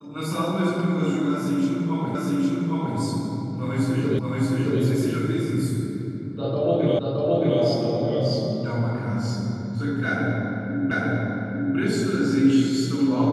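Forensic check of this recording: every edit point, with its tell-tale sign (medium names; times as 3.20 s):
2.15 s: repeat of the last 0.81 s
4.19 s: repeat of the last 0.62 s
6.99 s: repeat of the last 0.62 s
10.91 s: repeat of the last 0.85 s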